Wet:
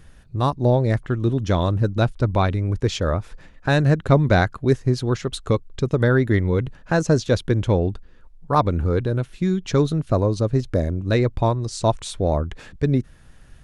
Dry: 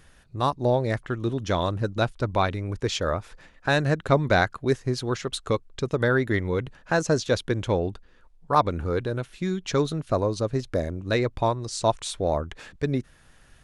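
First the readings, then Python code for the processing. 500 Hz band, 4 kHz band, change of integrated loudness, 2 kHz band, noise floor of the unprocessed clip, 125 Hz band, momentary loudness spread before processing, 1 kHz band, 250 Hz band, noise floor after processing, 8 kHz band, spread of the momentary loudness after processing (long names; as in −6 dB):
+3.0 dB, 0.0 dB, +4.5 dB, +0.5 dB, −56 dBFS, +8.5 dB, 7 LU, +1.0 dB, +6.0 dB, −48 dBFS, 0.0 dB, 6 LU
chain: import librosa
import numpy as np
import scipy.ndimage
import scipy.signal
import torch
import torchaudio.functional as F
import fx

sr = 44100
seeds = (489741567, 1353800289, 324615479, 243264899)

y = fx.low_shelf(x, sr, hz=330.0, db=9.5)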